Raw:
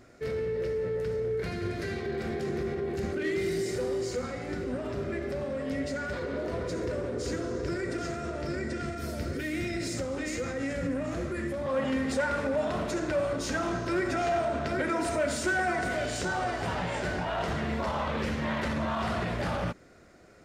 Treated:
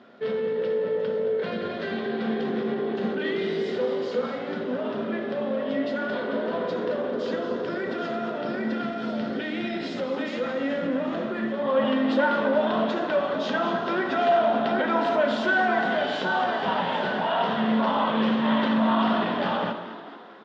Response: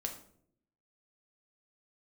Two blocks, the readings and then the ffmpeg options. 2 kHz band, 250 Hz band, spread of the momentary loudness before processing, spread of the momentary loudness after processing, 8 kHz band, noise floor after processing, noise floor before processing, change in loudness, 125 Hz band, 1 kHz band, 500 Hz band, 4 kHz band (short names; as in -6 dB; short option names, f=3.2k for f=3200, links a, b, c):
+5.0 dB, +6.5 dB, 5 LU, 7 LU, under -15 dB, -33 dBFS, -37 dBFS, +5.5 dB, -4.0 dB, +8.0 dB, +5.5 dB, +7.0 dB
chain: -filter_complex "[0:a]highpass=f=190:w=0.5412,highpass=f=190:w=1.3066,equalizer=f=220:t=q:w=4:g=5,equalizer=f=320:t=q:w=4:g=-8,equalizer=f=940:t=q:w=4:g=5,equalizer=f=2.2k:t=q:w=4:g=-8,equalizer=f=3.3k:t=q:w=4:g=8,lowpass=f=3.7k:w=0.5412,lowpass=f=3.7k:w=1.3066,asplit=7[a][b][c][d][e][f][g];[b]adelay=221,afreqshift=52,volume=-12dB[h];[c]adelay=442,afreqshift=104,volume=-17.2dB[i];[d]adelay=663,afreqshift=156,volume=-22.4dB[j];[e]adelay=884,afreqshift=208,volume=-27.6dB[k];[f]adelay=1105,afreqshift=260,volume=-32.8dB[l];[g]adelay=1326,afreqshift=312,volume=-38dB[m];[a][h][i][j][k][l][m]amix=inputs=7:normalize=0,asplit=2[n][o];[1:a]atrim=start_sample=2205[p];[o][p]afir=irnorm=-1:irlink=0,volume=0dB[q];[n][q]amix=inputs=2:normalize=0"